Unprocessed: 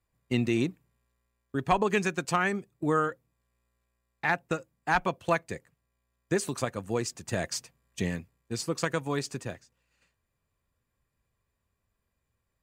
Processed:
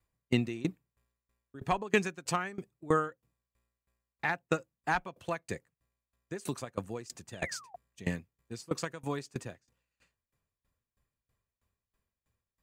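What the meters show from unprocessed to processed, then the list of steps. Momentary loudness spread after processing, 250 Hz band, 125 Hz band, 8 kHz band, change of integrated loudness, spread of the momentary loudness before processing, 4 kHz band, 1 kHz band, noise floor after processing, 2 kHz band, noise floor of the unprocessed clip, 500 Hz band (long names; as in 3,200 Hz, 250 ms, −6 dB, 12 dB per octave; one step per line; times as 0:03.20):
14 LU, −5.0 dB, −4.5 dB, −6.5 dB, −4.5 dB, 10 LU, −5.0 dB, −5.0 dB, below −85 dBFS, −5.0 dB, −81 dBFS, −5.0 dB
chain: sound drawn into the spectrogram fall, 0:07.32–0:07.76, 680–3,700 Hz −41 dBFS
tremolo with a ramp in dB decaying 3.1 Hz, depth 22 dB
level +2 dB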